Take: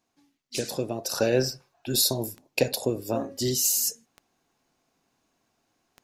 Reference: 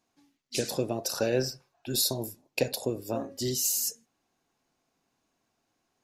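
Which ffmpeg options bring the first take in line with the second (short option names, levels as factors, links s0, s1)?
-af "adeclick=t=4,asetnsamples=n=441:p=0,asendcmd='1.11 volume volume -4dB',volume=1"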